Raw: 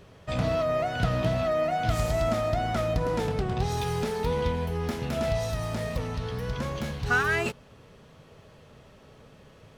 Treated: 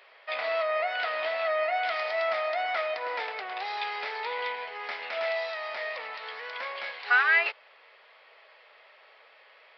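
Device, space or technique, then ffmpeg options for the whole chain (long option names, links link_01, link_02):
musical greeting card: -af "aresample=11025,aresample=44100,highpass=frequency=620:width=0.5412,highpass=frequency=620:width=1.3066,equalizer=frequency=2100:width_type=o:width=0.56:gain=10.5"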